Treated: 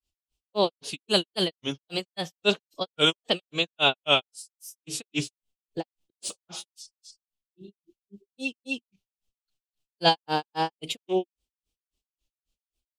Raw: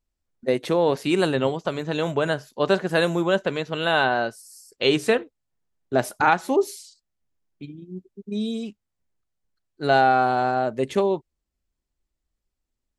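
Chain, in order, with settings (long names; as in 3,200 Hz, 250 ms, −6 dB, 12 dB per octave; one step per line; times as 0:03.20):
granular cloud 161 ms, grains 3.7 per second, spray 250 ms, pitch spread up and down by 3 semitones
phase-vocoder pitch shift with formants kept +1.5 semitones
high shelf with overshoot 2,300 Hz +7 dB, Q 3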